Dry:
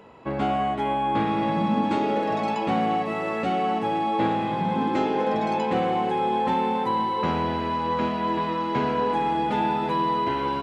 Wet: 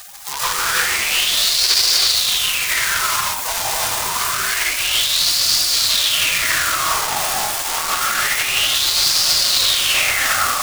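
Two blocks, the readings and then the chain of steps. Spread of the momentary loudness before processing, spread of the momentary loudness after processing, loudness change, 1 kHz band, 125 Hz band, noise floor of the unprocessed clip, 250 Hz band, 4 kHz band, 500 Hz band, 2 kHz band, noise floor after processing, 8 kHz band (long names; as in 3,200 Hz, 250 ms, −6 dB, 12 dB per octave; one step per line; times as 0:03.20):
2 LU, 6 LU, +9.5 dB, −1.5 dB, −6.5 dB, −28 dBFS, −16.5 dB, +24.0 dB, −7.5 dB, +15.5 dB, −24 dBFS, can't be measured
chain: in parallel at +3 dB: speech leveller within 4 dB 0.5 s
on the sum: log-companded quantiser 2 bits
high-shelf EQ 2,500 Hz +5 dB
hum removal 136.5 Hz, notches 5
hard clipping −7.5 dBFS, distortion −8 dB
gate on every frequency bin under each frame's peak −20 dB weak
high-shelf EQ 5,000 Hz −5.5 dB
reverb whose tail is shaped and stops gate 360 ms rising, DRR 0 dB
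boost into a limiter +13.5 dB
auto-filter bell 0.27 Hz 800–4,700 Hz +15 dB
level −8 dB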